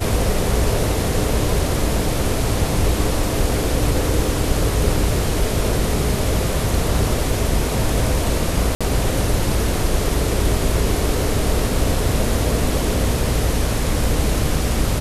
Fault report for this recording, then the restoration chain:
8.75–8.81 s: dropout 56 ms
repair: interpolate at 8.75 s, 56 ms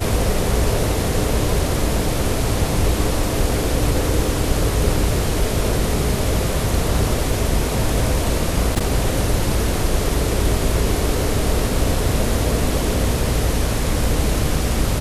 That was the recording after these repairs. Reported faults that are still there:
nothing left

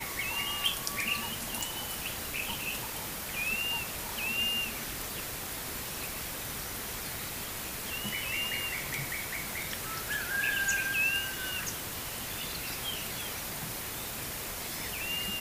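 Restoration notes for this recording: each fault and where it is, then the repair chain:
1.61 s: pop
9.53 s: pop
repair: de-click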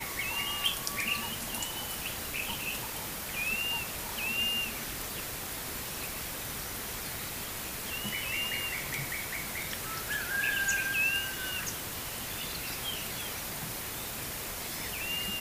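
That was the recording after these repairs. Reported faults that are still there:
nothing left

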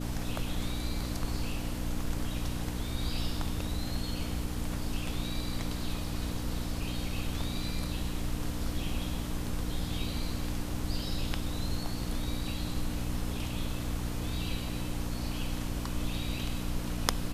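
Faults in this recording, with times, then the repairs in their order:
hum 60 Hz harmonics 5 -37 dBFS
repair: de-hum 60 Hz, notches 5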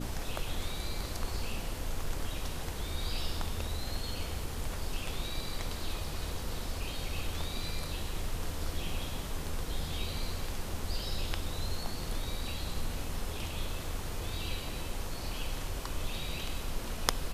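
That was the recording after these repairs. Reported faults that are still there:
nothing left

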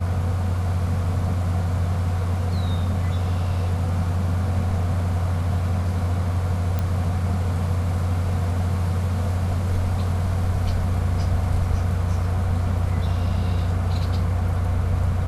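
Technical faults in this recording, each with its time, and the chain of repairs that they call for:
6.79 s: pop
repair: de-click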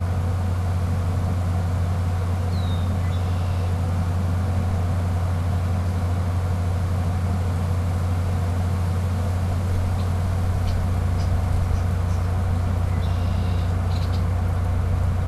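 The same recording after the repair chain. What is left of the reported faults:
nothing left

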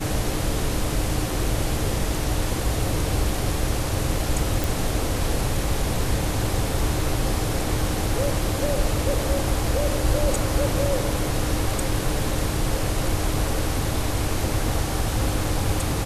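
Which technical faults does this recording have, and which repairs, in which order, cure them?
4.64 s: pop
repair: de-click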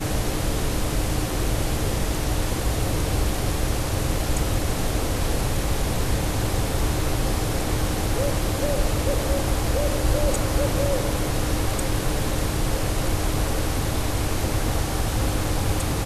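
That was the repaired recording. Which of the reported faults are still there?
nothing left

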